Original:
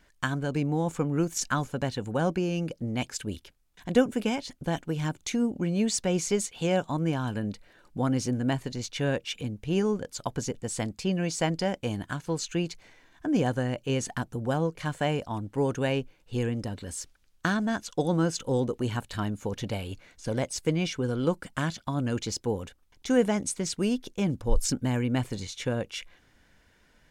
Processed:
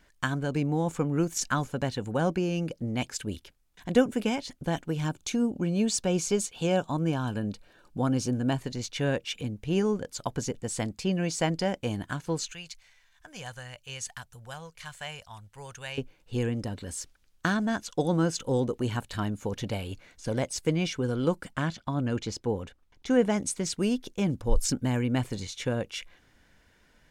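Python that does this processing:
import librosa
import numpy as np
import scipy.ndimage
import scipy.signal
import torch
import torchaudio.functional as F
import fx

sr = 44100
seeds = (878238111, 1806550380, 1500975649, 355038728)

y = fx.notch(x, sr, hz=2000.0, q=5.4, at=(5.02, 8.59))
y = fx.tone_stack(y, sr, knobs='10-0-10', at=(12.53, 15.98))
y = fx.lowpass(y, sr, hz=3600.0, slope=6, at=(21.53, 23.3))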